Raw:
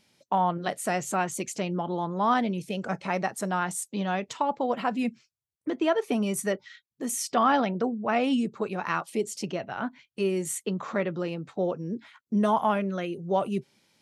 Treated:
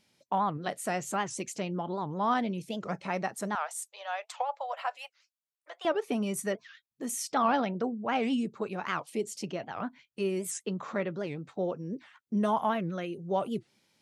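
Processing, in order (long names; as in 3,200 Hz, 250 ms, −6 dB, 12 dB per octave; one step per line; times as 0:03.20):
0:03.56–0:05.86: elliptic high-pass filter 600 Hz, stop band 60 dB
wow of a warped record 78 rpm, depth 250 cents
level −4 dB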